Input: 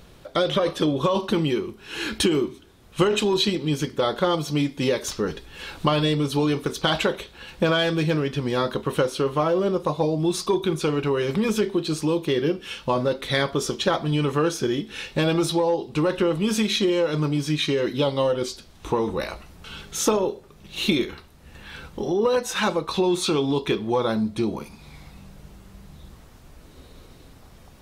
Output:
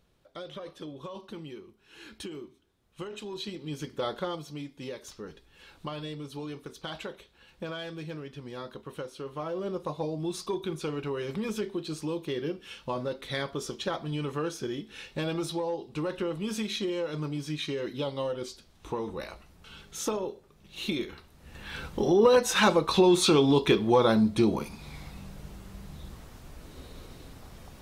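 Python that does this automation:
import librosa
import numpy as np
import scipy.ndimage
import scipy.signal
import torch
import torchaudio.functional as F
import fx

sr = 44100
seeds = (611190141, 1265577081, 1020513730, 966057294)

y = fx.gain(x, sr, db=fx.line((3.12, -19.5), (4.07, -8.5), (4.57, -16.5), (9.16, -16.5), (9.75, -10.0), (20.91, -10.0), (21.79, 1.0)))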